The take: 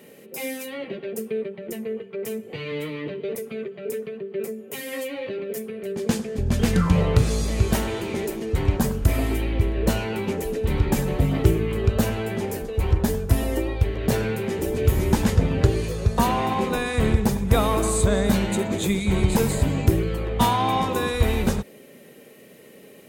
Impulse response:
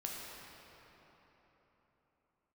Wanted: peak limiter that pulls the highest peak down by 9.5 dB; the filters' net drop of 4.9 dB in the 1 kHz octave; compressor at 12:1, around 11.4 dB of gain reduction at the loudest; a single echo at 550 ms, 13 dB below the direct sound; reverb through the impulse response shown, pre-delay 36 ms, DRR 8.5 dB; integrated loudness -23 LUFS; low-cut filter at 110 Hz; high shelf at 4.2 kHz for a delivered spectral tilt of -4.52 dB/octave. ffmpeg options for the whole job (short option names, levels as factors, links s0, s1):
-filter_complex "[0:a]highpass=110,equalizer=f=1000:t=o:g=-6.5,highshelf=f=4200:g=7.5,acompressor=threshold=0.0398:ratio=12,alimiter=level_in=1.06:limit=0.0631:level=0:latency=1,volume=0.944,aecho=1:1:550:0.224,asplit=2[s0][s1];[1:a]atrim=start_sample=2205,adelay=36[s2];[s1][s2]afir=irnorm=-1:irlink=0,volume=0.335[s3];[s0][s3]amix=inputs=2:normalize=0,volume=3.16"